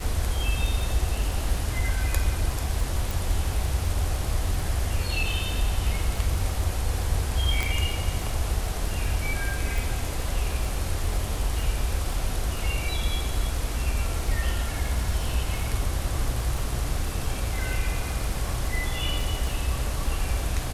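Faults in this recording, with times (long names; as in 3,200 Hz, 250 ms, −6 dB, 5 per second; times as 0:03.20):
surface crackle 17 per second −30 dBFS
0:03.11: click
0:07.63: click
0:09.78: click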